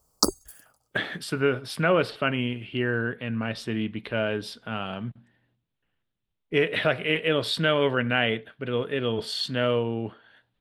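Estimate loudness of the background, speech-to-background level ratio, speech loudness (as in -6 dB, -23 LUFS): -26.0 LUFS, -0.5 dB, -26.5 LUFS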